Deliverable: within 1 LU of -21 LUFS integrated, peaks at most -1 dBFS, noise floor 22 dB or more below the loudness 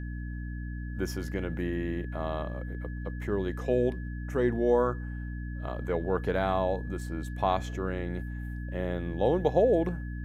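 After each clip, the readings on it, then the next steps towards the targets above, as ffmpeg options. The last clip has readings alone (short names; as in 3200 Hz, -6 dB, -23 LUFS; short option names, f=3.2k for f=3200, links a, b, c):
hum 60 Hz; harmonics up to 300 Hz; hum level -34 dBFS; steady tone 1700 Hz; tone level -48 dBFS; loudness -31.0 LUFS; peak -12.0 dBFS; loudness target -21.0 LUFS
-> -af "bandreject=f=60:t=h:w=4,bandreject=f=120:t=h:w=4,bandreject=f=180:t=h:w=4,bandreject=f=240:t=h:w=4,bandreject=f=300:t=h:w=4"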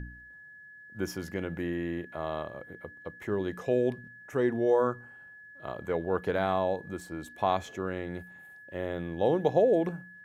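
hum none; steady tone 1700 Hz; tone level -48 dBFS
-> -af "bandreject=f=1.7k:w=30"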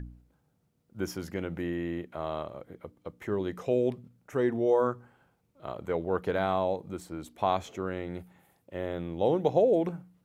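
steady tone none; loudness -30.5 LUFS; peak -12.5 dBFS; loudness target -21.0 LUFS
-> -af "volume=9.5dB"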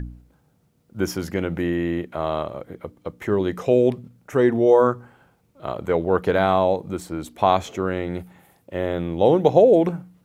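loudness -21.0 LUFS; peak -3.0 dBFS; noise floor -63 dBFS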